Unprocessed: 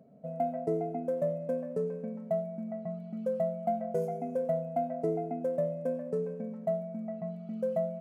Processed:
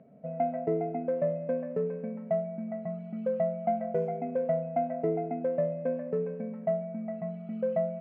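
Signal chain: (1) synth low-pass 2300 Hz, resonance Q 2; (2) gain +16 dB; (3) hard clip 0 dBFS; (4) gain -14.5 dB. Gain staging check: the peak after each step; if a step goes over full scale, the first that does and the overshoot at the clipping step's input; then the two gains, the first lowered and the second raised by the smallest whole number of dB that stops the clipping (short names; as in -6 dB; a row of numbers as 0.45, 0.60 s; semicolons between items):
-18.5, -2.5, -2.5, -17.0 dBFS; no overload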